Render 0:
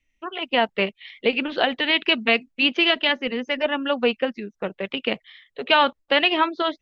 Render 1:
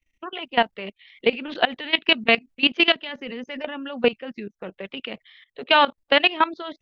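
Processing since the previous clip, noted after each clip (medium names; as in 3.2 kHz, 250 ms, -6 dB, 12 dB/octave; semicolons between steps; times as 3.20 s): level held to a coarse grid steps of 18 dB; trim +3.5 dB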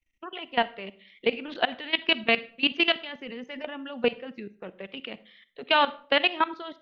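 reverberation RT60 0.45 s, pre-delay 41 ms, DRR 17 dB; trim -5 dB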